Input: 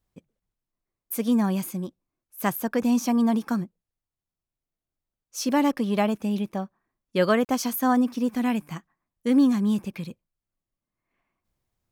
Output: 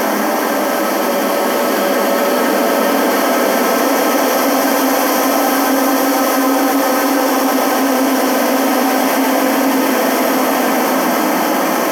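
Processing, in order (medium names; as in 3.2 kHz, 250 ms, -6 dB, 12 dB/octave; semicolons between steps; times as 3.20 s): spectral levelling over time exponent 0.2; high-pass 250 Hz 12 dB/octave; frequency shift +21 Hz; in parallel at -5.5 dB: short-mantissa float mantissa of 2-bit; on the sum: Paulstretch 5.6×, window 1.00 s, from 6.77 s; level flattener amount 70%; trim -2.5 dB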